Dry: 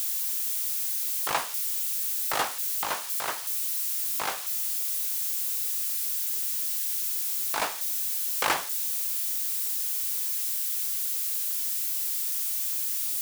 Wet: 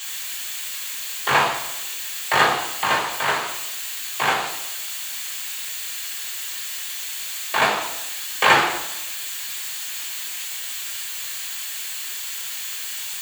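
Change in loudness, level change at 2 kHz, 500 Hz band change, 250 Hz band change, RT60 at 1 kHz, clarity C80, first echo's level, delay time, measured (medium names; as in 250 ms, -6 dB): +2.5 dB, +13.5 dB, +11.0 dB, +12.5 dB, 0.90 s, 8.0 dB, no echo, no echo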